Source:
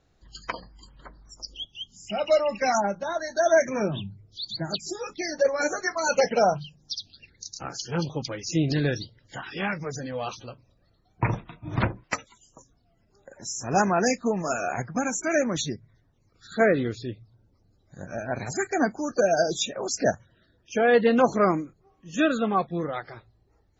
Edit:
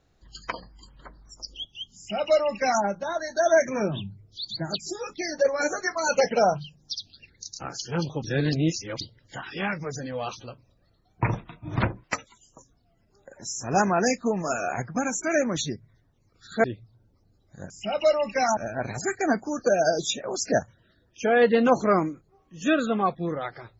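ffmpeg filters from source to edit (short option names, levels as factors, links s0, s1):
-filter_complex "[0:a]asplit=6[s0][s1][s2][s3][s4][s5];[s0]atrim=end=8.242[s6];[s1]atrim=start=8.238:end=9.012,asetpts=PTS-STARTPTS,areverse[s7];[s2]atrim=start=9.008:end=16.642[s8];[s3]atrim=start=17.028:end=18.092[s9];[s4]atrim=start=1.958:end=2.832[s10];[s5]atrim=start=18.088[s11];[s6][s7]acrossfade=d=0.004:c1=hsin:c2=hsin[s12];[s12][s8]acrossfade=d=0.004:c1=hsin:c2=hsin[s13];[s13][s9]acrossfade=d=0.004:c1=hsin:c2=hsin[s14];[s14][s10]acrossfade=d=0.004:c1=hsin:c2=hsin[s15];[s15][s11]acrossfade=d=0.004:c1=hsin:c2=hsin"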